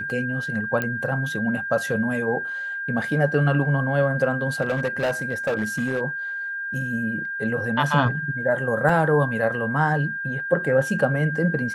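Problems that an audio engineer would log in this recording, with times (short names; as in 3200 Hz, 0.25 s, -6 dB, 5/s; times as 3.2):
tone 1600 Hz -27 dBFS
0.82 pop -12 dBFS
4.61–6.01 clipped -19 dBFS
8.89 gap 3.5 ms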